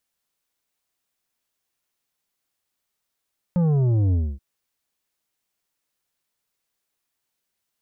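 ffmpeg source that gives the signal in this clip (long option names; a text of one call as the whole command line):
ffmpeg -f lavfi -i "aevalsrc='0.133*clip((0.83-t)/0.26,0,1)*tanh(2.66*sin(2*PI*180*0.83/log(65/180)*(exp(log(65/180)*t/0.83)-1)))/tanh(2.66)':duration=0.83:sample_rate=44100" out.wav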